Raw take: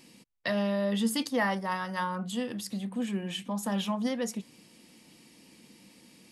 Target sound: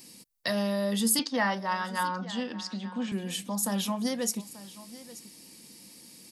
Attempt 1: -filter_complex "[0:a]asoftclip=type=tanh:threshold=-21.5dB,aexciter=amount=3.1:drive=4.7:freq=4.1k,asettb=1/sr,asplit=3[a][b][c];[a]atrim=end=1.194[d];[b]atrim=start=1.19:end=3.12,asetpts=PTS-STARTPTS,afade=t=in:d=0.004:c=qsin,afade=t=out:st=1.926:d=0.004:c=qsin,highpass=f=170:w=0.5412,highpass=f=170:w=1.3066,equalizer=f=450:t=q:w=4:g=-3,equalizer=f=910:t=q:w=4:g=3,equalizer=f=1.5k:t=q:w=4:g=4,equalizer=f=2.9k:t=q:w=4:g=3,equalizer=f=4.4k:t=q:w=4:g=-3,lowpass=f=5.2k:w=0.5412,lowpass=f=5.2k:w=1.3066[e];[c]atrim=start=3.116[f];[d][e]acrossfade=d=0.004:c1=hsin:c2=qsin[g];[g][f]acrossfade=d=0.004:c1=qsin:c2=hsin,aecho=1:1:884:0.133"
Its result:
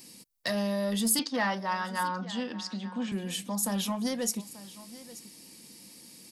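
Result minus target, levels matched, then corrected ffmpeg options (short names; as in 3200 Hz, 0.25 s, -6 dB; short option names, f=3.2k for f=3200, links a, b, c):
soft clip: distortion +20 dB
-filter_complex "[0:a]asoftclip=type=tanh:threshold=-10dB,aexciter=amount=3.1:drive=4.7:freq=4.1k,asettb=1/sr,asplit=3[a][b][c];[a]atrim=end=1.194[d];[b]atrim=start=1.19:end=3.12,asetpts=PTS-STARTPTS,afade=t=in:d=0.004:c=qsin,afade=t=out:st=1.926:d=0.004:c=qsin,highpass=f=170:w=0.5412,highpass=f=170:w=1.3066,equalizer=f=450:t=q:w=4:g=-3,equalizer=f=910:t=q:w=4:g=3,equalizer=f=1.5k:t=q:w=4:g=4,equalizer=f=2.9k:t=q:w=4:g=3,equalizer=f=4.4k:t=q:w=4:g=-3,lowpass=f=5.2k:w=0.5412,lowpass=f=5.2k:w=1.3066[e];[c]atrim=start=3.116[f];[d][e]acrossfade=d=0.004:c1=hsin:c2=qsin[g];[g][f]acrossfade=d=0.004:c1=qsin:c2=hsin,aecho=1:1:884:0.133"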